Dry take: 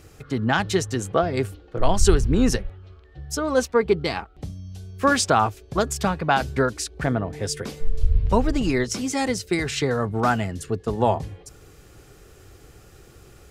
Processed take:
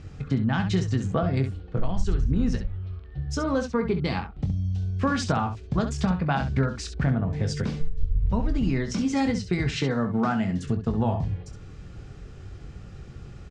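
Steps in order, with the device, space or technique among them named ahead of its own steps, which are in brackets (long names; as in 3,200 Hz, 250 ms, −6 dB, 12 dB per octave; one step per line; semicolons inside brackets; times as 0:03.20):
0:09.76–0:10.64: high-pass filter 180 Hz 12 dB per octave
jukebox (low-pass filter 7,700 Hz 12 dB per octave; low shelf with overshoot 270 Hz +7.5 dB, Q 1.5; downward compressor 4 to 1, threshold −22 dBFS, peak gain reduction 16 dB)
high-frequency loss of the air 83 metres
ambience of single reflections 22 ms −9.5 dB, 67 ms −9.5 dB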